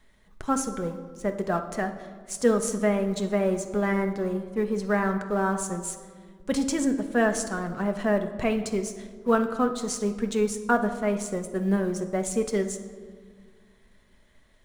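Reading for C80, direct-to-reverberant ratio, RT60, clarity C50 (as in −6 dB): 12.0 dB, 5.5 dB, 1.8 s, 10.5 dB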